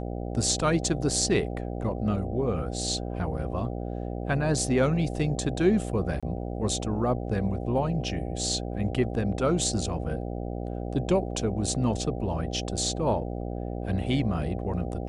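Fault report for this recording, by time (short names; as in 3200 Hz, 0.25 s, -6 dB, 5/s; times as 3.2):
buzz 60 Hz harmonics 13 -33 dBFS
6.2–6.23 gap 26 ms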